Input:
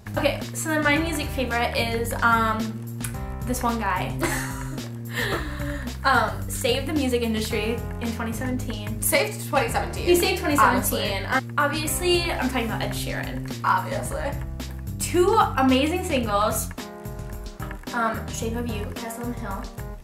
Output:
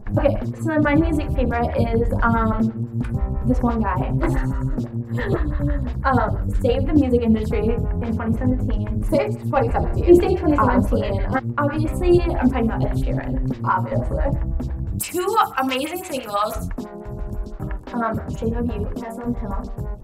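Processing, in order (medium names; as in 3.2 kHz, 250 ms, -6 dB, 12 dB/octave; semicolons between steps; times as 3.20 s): tilt EQ -4 dB/octave, from 14.98 s +2.5 dB/octave, from 16.54 s -3 dB/octave; lamp-driven phase shifter 6 Hz; trim +2 dB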